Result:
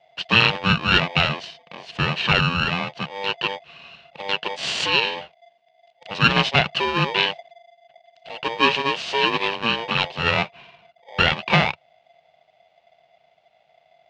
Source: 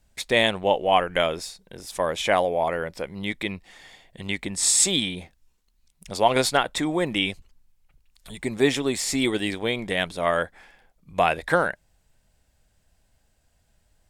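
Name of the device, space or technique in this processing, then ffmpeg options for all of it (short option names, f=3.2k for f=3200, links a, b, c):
ring modulator pedal into a guitar cabinet: -af "aeval=exprs='val(0)*sgn(sin(2*PI*690*n/s))':c=same,highpass=93,equalizer=f=110:t=q:w=4:g=-4,equalizer=f=150:t=q:w=4:g=7,equalizer=f=290:t=q:w=4:g=-8,equalizer=f=660:t=q:w=4:g=4,equalizer=f=1.3k:t=q:w=4:g=-6,equalizer=f=2.8k:t=q:w=4:g=7,lowpass=f=4.1k:w=0.5412,lowpass=f=4.1k:w=1.3066,volume=3dB"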